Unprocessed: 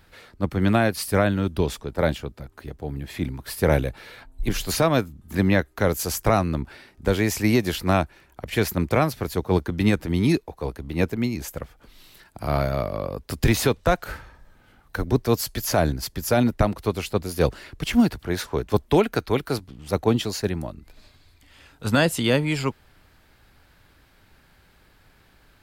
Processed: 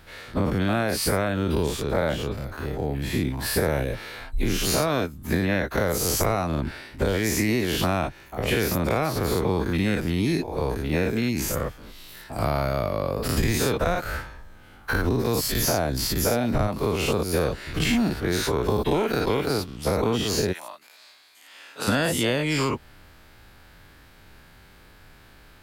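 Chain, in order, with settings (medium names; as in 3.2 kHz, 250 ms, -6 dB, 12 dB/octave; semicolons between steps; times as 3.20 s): every event in the spectrogram widened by 120 ms; 20.52–21.87 s: high-pass 1.4 kHz -> 440 Hz 12 dB/octave; compression 6:1, threshold -21 dBFS, peak gain reduction 11.5 dB; trim +1 dB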